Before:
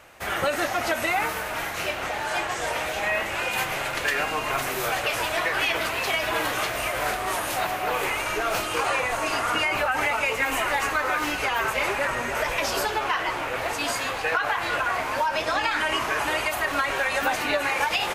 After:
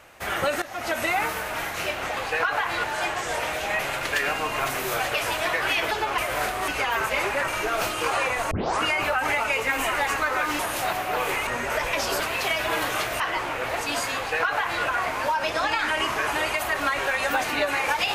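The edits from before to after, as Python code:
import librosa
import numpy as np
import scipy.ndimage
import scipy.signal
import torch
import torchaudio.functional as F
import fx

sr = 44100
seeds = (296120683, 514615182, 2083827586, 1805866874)

y = fx.edit(x, sr, fx.fade_in_from(start_s=0.62, length_s=0.37, floor_db=-18.5),
    fx.cut(start_s=3.12, length_s=0.59),
    fx.swap(start_s=5.83, length_s=1.0, other_s=12.85, other_length_s=0.27),
    fx.swap(start_s=7.33, length_s=0.88, other_s=11.32, other_length_s=0.8),
    fx.tape_start(start_s=9.24, length_s=0.31),
    fx.duplicate(start_s=14.09, length_s=0.67, to_s=2.17), tone=tone)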